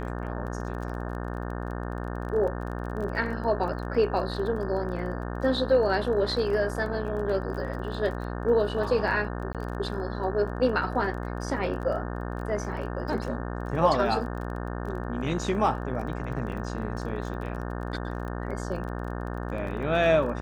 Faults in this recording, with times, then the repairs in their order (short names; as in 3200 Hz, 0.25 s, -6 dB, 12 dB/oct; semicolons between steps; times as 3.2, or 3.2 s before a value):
buzz 60 Hz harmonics 30 -33 dBFS
crackle 23/s -36 dBFS
9.53–9.55 gap 17 ms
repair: de-click; de-hum 60 Hz, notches 30; interpolate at 9.53, 17 ms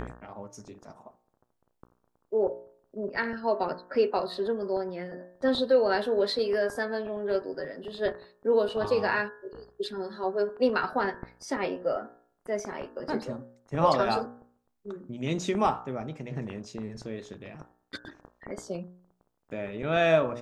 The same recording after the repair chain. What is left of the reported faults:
none